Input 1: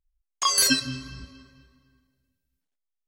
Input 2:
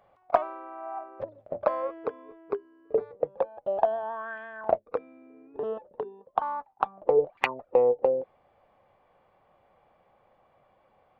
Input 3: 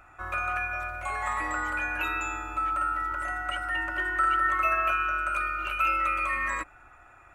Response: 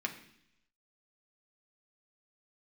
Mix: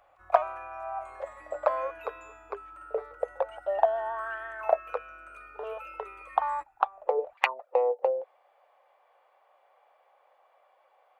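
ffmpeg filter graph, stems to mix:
-filter_complex "[1:a]highpass=frequency=560:width=0.5412,highpass=frequency=560:width=1.3066,volume=1.5dB[link_01];[2:a]volume=-19.5dB[link_02];[link_01][link_02]amix=inputs=2:normalize=0"

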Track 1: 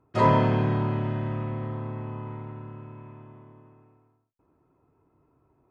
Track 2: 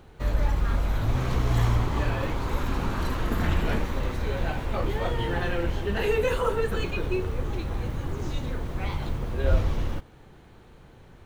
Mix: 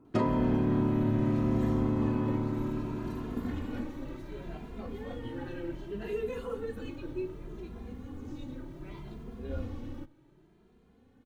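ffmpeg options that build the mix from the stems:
ffmpeg -i stem1.wav -i stem2.wav -filter_complex "[0:a]acompressor=threshold=-30dB:ratio=16,volume=0.5dB[link_01];[1:a]asplit=2[link_02][link_03];[link_03]adelay=2.5,afreqshift=0.66[link_04];[link_02][link_04]amix=inputs=2:normalize=1,adelay=50,volume=-13.5dB[link_05];[link_01][link_05]amix=inputs=2:normalize=0,equalizer=frequency=270:width=1.3:gain=13.5" out.wav

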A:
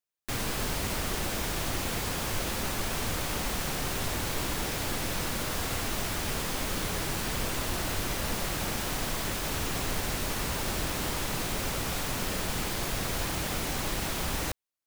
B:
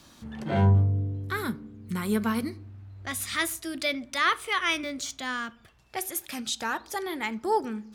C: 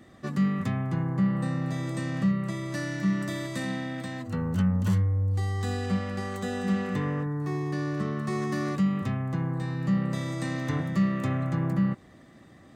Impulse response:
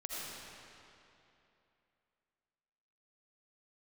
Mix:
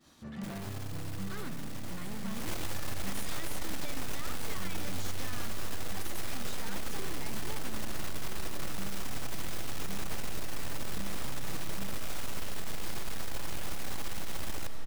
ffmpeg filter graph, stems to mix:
-filter_complex "[0:a]aeval=exprs='max(val(0),0)':channel_layout=same,adelay=150,volume=-5dB,afade=type=in:start_time=2.26:duration=0.31:silence=0.334965,asplit=2[link_01][link_02];[link_02]volume=-5dB[link_03];[1:a]agate=range=-33dB:threshold=-49dB:ratio=3:detection=peak,acompressor=threshold=-32dB:ratio=6,asoftclip=type=hard:threshold=-39.5dB,volume=-2.5dB[link_04];[2:a]volume=-17.5dB[link_05];[3:a]atrim=start_sample=2205[link_06];[link_03][link_06]afir=irnorm=-1:irlink=0[link_07];[link_01][link_04][link_05][link_07]amix=inputs=4:normalize=0,acompressor=threshold=-25dB:ratio=6"

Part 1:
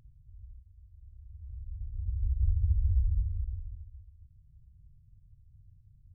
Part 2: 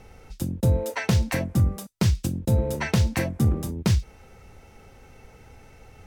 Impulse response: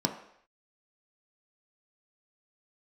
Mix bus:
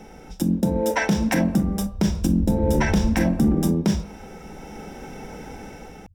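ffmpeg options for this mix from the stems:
-filter_complex "[0:a]volume=-0.5dB[link_01];[1:a]acompressor=threshold=-24dB:ratio=6,volume=1.5dB,asplit=2[link_02][link_03];[link_03]volume=-8.5dB[link_04];[2:a]atrim=start_sample=2205[link_05];[link_04][link_05]afir=irnorm=-1:irlink=0[link_06];[link_01][link_02][link_06]amix=inputs=3:normalize=0,dynaudnorm=framelen=250:gausssize=5:maxgain=7dB,alimiter=limit=-10.5dB:level=0:latency=1:release=36"

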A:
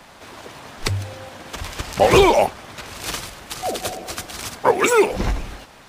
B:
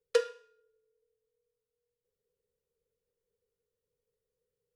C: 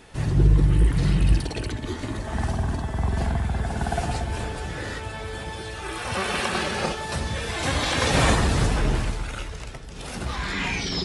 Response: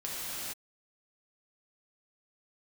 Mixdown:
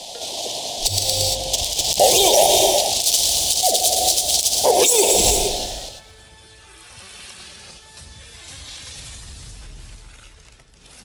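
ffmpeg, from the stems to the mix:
-filter_complex "[0:a]firequalizer=gain_entry='entry(210,0);entry(700,12);entry(1300,-29);entry(3200,1)':delay=0.05:min_phase=1,adynamicsmooth=sensitivity=3:basefreq=4800,crystalizer=i=9.5:c=0,volume=-3dB,asplit=3[link_01][link_02][link_03];[link_02]volume=-13.5dB[link_04];[link_03]volume=-12dB[link_05];[1:a]volume=-16.5dB[link_06];[2:a]acrossover=split=120|3000[link_07][link_08][link_09];[link_08]acompressor=threshold=-37dB:ratio=3[link_10];[link_07][link_10][link_09]amix=inputs=3:normalize=0,alimiter=limit=-18dB:level=0:latency=1:release=58,adelay=850,volume=-13.5dB[link_11];[3:a]atrim=start_sample=2205[link_12];[link_04][link_12]afir=irnorm=-1:irlink=0[link_13];[link_05]aecho=0:1:114|228|342|456|570|684|798|912:1|0.56|0.314|0.176|0.0983|0.0551|0.0308|0.0173[link_14];[link_01][link_06][link_11][link_13][link_14]amix=inputs=5:normalize=0,highshelf=frequency=2200:gain=10,alimiter=limit=-3.5dB:level=0:latency=1:release=112"

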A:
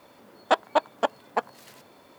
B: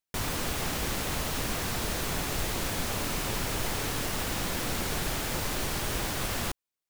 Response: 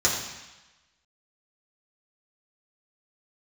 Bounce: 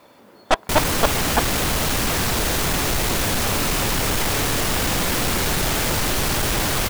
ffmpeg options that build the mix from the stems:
-filter_complex "[0:a]aeval=exprs='0.473*sin(PI/2*2*val(0)/0.473)':channel_layout=same,aeval=exprs='0.473*(cos(1*acos(clip(val(0)/0.473,-1,1)))-cos(1*PI/2))+0.188*(cos(2*acos(clip(val(0)/0.473,-1,1)))-cos(2*PI/2))+0.0376*(cos(3*acos(clip(val(0)/0.473,-1,1)))-cos(3*PI/2))':channel_layout=same,volume=-4dB[link_01];[1:a]aeval=exprs='0.15*sin(PI/2*3.16*val(0)/0.15)':channel_layout=same,adelay=550,volume=-0.5dB[link_02];[link_01][link_02]amix=inputs=2:normalize=0"

